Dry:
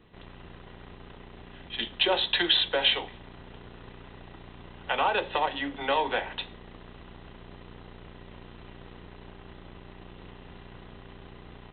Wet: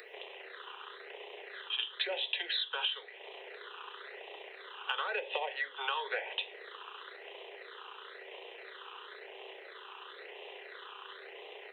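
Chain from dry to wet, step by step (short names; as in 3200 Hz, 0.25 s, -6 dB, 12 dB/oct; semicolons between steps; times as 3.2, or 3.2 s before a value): in parallel at +1.5 dB: upward compressor, threshold -31 dBFS; on the sum: phaser stages 8, 0.98 Hz, lowest notch 590–1400 Hz; compressor 16:1, threshold -29 dBFS, peak gain reduction 18 dB; steep high-pass 410 Hz 72 dB/oct; gain -1.5 dB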